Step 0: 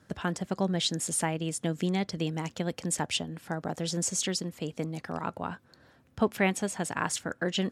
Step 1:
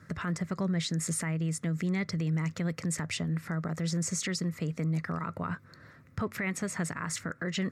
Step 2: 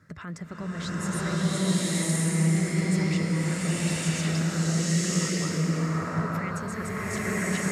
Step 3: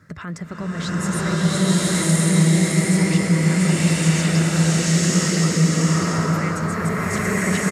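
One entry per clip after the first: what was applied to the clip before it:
graphic EQ with 31 bands 100 Hz +10 dB, 160 Hz +10 dB, 800 Hz -9 dB, 1.25 kHz +9 dB, 2 kHz +11 dB, 3.15 kHz -9 dB, 10 kHz -4 dB; in parallel at +2 dB: compression, threshold -32 dBFS, peak gain reduction 14.5 dB; on the sum: peak limiter -18.5 dBFS, peak gain reduction 11.5 dB; trim -5 dB
swelling reverb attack 1070 ms, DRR -11 dB; trim -5 dB
delay 682 ms -4 dB; trim +6.5 dB

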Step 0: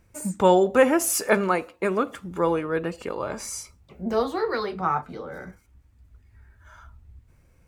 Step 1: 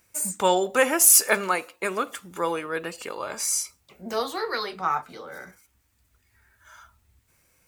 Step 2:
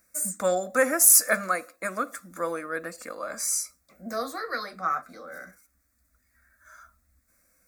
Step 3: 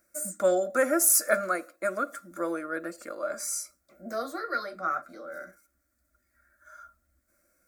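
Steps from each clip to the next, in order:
tilt EQ +3.5 dB/octave; trim -1 dB
static phaser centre 600 Hz, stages 8
small resonant body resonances 350/590/1400/3100 Hz, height 13 dB, ringing for 50 ms; trim -5.5 dB

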